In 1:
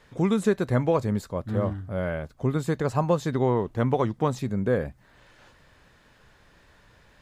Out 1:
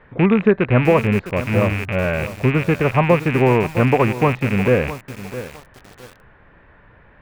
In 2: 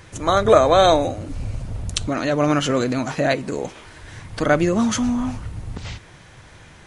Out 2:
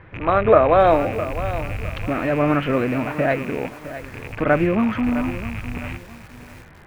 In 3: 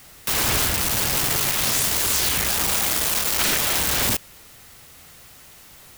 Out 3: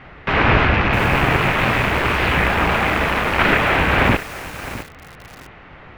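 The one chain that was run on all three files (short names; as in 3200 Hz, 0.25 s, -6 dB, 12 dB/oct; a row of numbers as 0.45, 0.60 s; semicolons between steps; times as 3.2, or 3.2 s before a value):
rattling part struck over -35 dBFS, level -18 dBFS; LPF 2300 Hz 24 dB/oct; lo-fi delay 0.659 s, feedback 35%, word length 6-bit, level -12.5 dB; normalise peaks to -1.5 dBFS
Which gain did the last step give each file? +8.0, 0.0, +11.5 dB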